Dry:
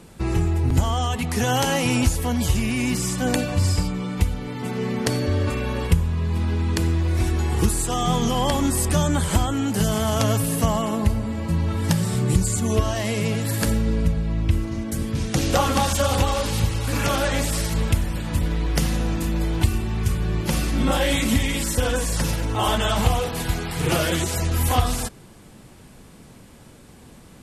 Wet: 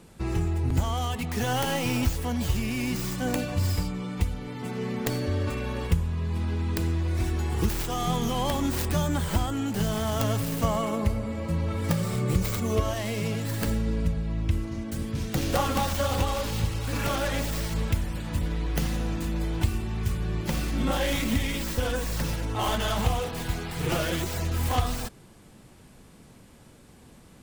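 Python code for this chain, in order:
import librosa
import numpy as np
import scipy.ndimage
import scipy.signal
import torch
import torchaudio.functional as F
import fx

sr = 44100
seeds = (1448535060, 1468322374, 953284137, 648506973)

y = fx.tracing_dist(x, sr, depth_ms=0.38)
y = fx.small_body(y, sr, hz=(530.0, 1200.0, 2200.0), ring_ms=30, db=9, at=(10.63, 12.94))
y = y * librosa.db_to_amplitude(-5.5)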